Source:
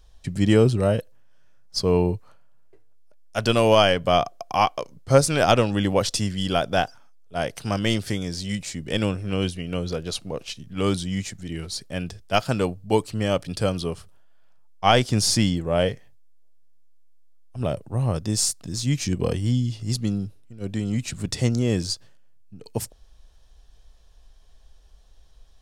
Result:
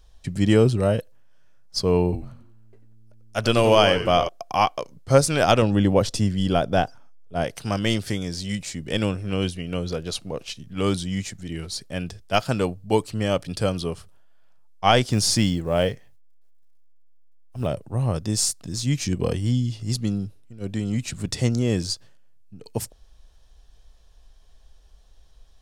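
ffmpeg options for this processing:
-filter_complex "[0:a]asettb=1/sr,asplit=3[s0][s1][s2];[s0]atrim=end=2.034[s3];[s1]atrim=start=2.03:end=4.29,asetpts=PTS-STARTPTS,afade=t=in:d=0.004:c=qsin,afade=t=out:st=2.256:d=0.004:c=qsin,asplit=5[s4][s5][s6][s7][s8];[s5]adelay=92,afreqshift=-110,volume=0.316[s9];[s6]adelay=184,afreqshift=-220,volume=0.111[s10];[s7]adelay=276,afreqshift=-330,volume=0.0389[s11];[s8]adelay=368,afreqshift=-440,volume=0.0135[s12];[s4][s9][s10][s11][s12]amix=inputs=5:normalize=0,atrim=end_sample=99666[s13];[s2]atrim=start=4.286[s14];[s3][s13]acrossfade=d=0.004:c1=hsin:c2=qsin[s15];[s15][s14]acrossfade=d=0.004:c1=qsin:c2=hsin,asettb=1/sr,asplit=3[s16][s17][s18];[s16]atrim=end=5.624[s19];[s17]atrim=start=5.62:end=7.44,asetpts=PTS-STARTPTS,afade=t=in:d=0.004:c=qsin,afade=t=out:st=1.816:d=0.004:c=qsin,tiltshelf=f=860:g=4.5[s20];[s18]atrim=start=7.436[s21];[s19][s20]acrossfade=d=0.004:c1=hsin:c2=qsin[s22];[s22][s21]acrossfade=d=0.004:c1=qsin:c2=hsin,asettb=1/sr,asplit=3[s23][s24][s25];[s23]atrim=end=15.104[s26];[s24]atrim=start=15.1:end=17.67,asetpts=PTS-STARTPTS,afade=t=in:d=0.004:c=qsin,afade=t=out:st=2.566:d=0.004:c=qsin,acrusher=bits=9:mode=log:mix=0:aa=0.000001[s27];[s25]atrim=start=17.666[s28];[s26][s27]acrossfade=d=0.004:c1=hsin:c2=qsin[s29];[s29][s28]acrossfade=d=0.004:c1=qsin:c2=hsin"

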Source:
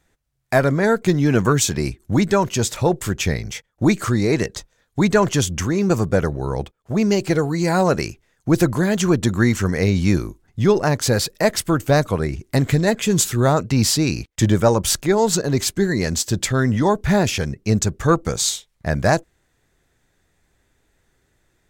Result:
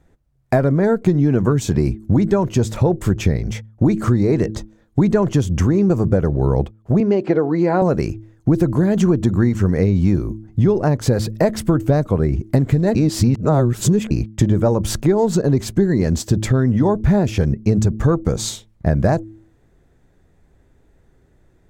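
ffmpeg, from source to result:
-filter_complex "[0:a]asettb=1/sr,asplit=3[s0][s1][s2];[s0]atrim=end=7.004[s3];[s1]atrim=start=7:end=7.82,asetpts=PTS-STARTPTS,afade=t=in:d=0.004:c=qsin,afade=t=out:st=0.816:d=0.004:c=qsin,highpass=280,lowpass=3100[s4];[s2]atrim=start=7.816[s5];[s3][s4]acrossfade=d=0.004:c1=hsin:c2=qsin[s6];[s6][s5]acrossfade=d=0.004:c1=qsin:c2=hsin,asplit=3[s7][s8][s9];[s7]atrim=end=12.952[s10];[s8]atrim=start=12.948:end=14.112,asetpts=PTS-STARTPTS,areverse[s11];[s9]atrim=start=14.108[s12];[s10][s11]acrossfade=d=0.004:c1=hsin:c2=hsin[s13];[s13][s12]acrossfade=d=0.004:c1=hsin:c2=hsin,tiltshelf=f=1100:g=8.5,bandreject=f=108.5:t=h:w=4,bandreject=f=217:t=h:w=4,bandreject=f=325.5:t=h:w=4,acompressor=threshold=0.178:ratio=6,volume=1.41"

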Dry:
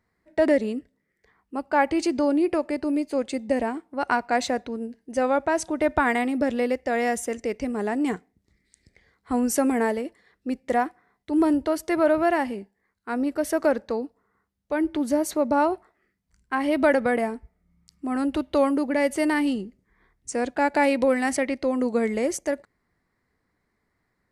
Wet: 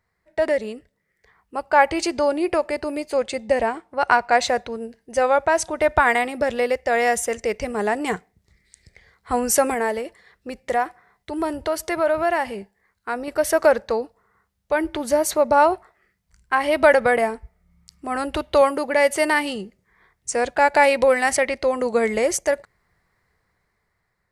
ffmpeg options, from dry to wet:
-filter_complex "[0:a]asettb=1/sr,asplit=3[s0][s1][s2];[s0]atrim=end=3.174[s3];[s1]atrim=start=3.17:end=4.48,asetpts=PTS-STARTPTS,afade=t=in:d=0.004:c=qsin,afade=t=out:st=1.306:d=0.004:c=qsin,highshelf=f=11000:g=-10[s4];[s2]atrim=start=4.476[s5];[s3][s4]acrossfade=d=0.004:c1=hsin:c2=qsin[s6];[s6][s5]acrossfade=d=0.004:c1=qsin:c2=hsin,asettb=1/sr,asplit=3[s7][s8][s9];[s7]atrim=end=9.744[s10];[s8]atrim=start=9.74:end=13.28,asetpts=PTS-STARTPTS,afade=t=in:d=0.004:c=qsin,afade=t=out:st=3.536:d=0.004:c=qsin,acompressor=threshold=0.0282:ratio=1.5:attack=3.2:release=140:knee=1:detection=peak[s11];[s9]atrim=start=13.276[s12];[s10][s11]acrossfade=d=0.004:c1=hsin:c2=qsin[s13];[s13][s12]acrossfade=d=0.004:c1=qsin:c2=hsin,asettb=1/sr,asplit=3[s14][s15][s16];[s14]atrim=end=18.614[s17];[s15]atrim=start=18.61:end=20.31,asetpts=PTS-STARTPTS,afade=t=in:d=0.004:c=qsin,afade=t=out:st=1.696:d=0.004:c=qsin,highpass=f=140:p=1[s18];[s16]atrim=start=20.306[s19];[s17][s18]acrossfade=d=0.004:c1=hsin:c2=qsin[s20];[s20][s19]acrossfade=d=0.004:c1=qsin:c2=hsin,equalizer=f=270:t=o:w=0.7:g=-14.5,dynaudnorm=f=240:g=9:m=2.11,volume=1.19"

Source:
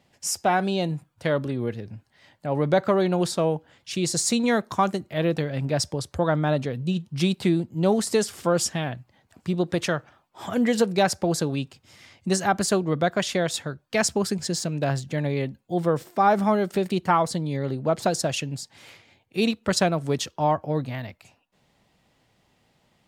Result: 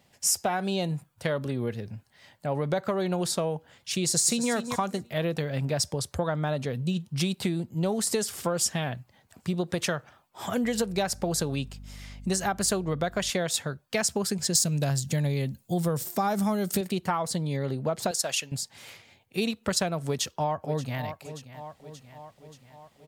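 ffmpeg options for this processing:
-filter_complex "[0:a]asplit=2[s0][s1];[s1]afade=t=in:st=4.04:d=0.01,afade=t=out:st=4.51:d=0.01,aecho=0:1:240|480|720:0.298538|0.0597077|0.0119415[s2];[s0][s2]amix=inputs=2:normalize=0,asettb=1/sr,asplit=3[s3][s4][s5];[s3]atrim=end=10.644[s6];[s4]atrim=start=10.64:end=13.3,asetpts=PTS-STARTPTS,afade=t=in:d=0.004:c=qsin,afade=t=out:st=2.656:d=0.004:c=qsin,aeval=exprs='val(0)+0.00794*(sin(2*PI*50*n/s)+sin(2*PI*2*50*n/s)/2+sin(2*PI*3*50*n/s)/3+sin(2*PI*4*50*n/s)/4+sin(2*PI*5*50*n/s)/5)':c=same[s7];[s5]atrim=start=13.296[s8];[s6][s7]acrossfade=d=0.004:c1=hsin:c2=qsin[s9];[s9][s8]acrossfade=d=0.004:c1=qsin:c2=hsin,asettb=1/sr,asplit=3[s10][s11][s12];[s10]atrim=end=14.554[s13];[s11]atrim=start=14.55:end=16.81,asetpts=PTS-STARTPTS,afade=t=in:d=0.004:c=qsin,afade=t=out:st=2.256:d=0.004:c=qsin,bass=f=250:g=8,treble=f=4000:g=12[s14];[s12]atrim=start=16.806[s15];[s13][s14]acrossfade=d=0.004:c1=hsin:c2=qsin[s16];[s16][s15]acrossfade=d=0.004:c1=qsin:c2=hsin,asettb=1/sr,asplit=3[s17][s18][s19];[s17]atrim=end=18.114[s20];[s18]atrim=start=18.11:end=18.52,asetpts=PTS-STARTPTS,afade=t=in:d=0.004:c=qsin,afade=t=out:st=0.406:d=0.004:c=qsin,highpass=f=1000:p=1[s21];[s19]atrim=start=18.516[s22];[s20][s21]acrossfade=d=0.004:c1=hsin:c2=qsin[s23];[s23][s22]acrossfade=d=0.004:c1=qsin:c2=hsin,asplit=2[s24][s25];[s25]afade=t=in:st=20.06:d=0.01,afade=t=out:st=21.03:d=0.01,aecho=0:1:580|1160|1740|2320|2900|3480:0.16788|0.100728|0.0604369|0.0362622|0.0217573|0.0130544[s26];[s24][s26]amix=inputs=2:normalize=0,equalizer=f=310:t=o:w=0.28:g=-6,acompressor=threshold=0.0631:ratio=6,highshelf=f=7700:g=9.5"

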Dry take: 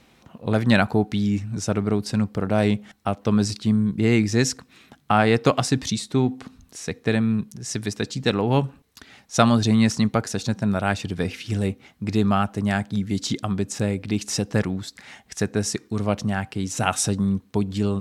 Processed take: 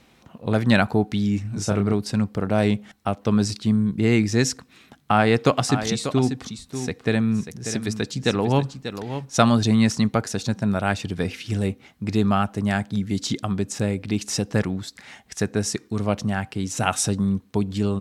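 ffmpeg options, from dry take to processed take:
-filter_complex "[0:a]asettb=1/sr,asplit=3[s0][s1][s2];[s0]atrim=end=1.424[s3];[s1]atrim=start=1.42:end=1.94,asetpts=PTS-STARTPTS,afade=t=in:d=0.004:c=qsin,afade=t=out:st=0.516:d=0.004:c=qsin,asplit=2[s4][s5];[s5]adelay=30,volume=0.562[s6];[s4][s6]amix=inputs=2:normalize=0,atrim=end_sample=22932[s7];[s2]atrim=start=1.936[s8];[s3][s7]acrossfade=d=0.004:c1=hsin:c2=qsin[s9];[s9][s8]acrossfade=d=0.004:c1=qsin:c2=hsin,asplit=3[s10][s11][s12];[s10]afade=t=out:st=5.27:d=0.02[s13];[s11]aecho=1:1:590:0.316,afade=t=in:st=5.27:d=0.02,afade=t=out:st=9.48:d=0.02[s14];[s12]afade=t=in:st=9.48:d=0.02[s15];[s13][s14][s15]amix=inputs=3:normalize=0"

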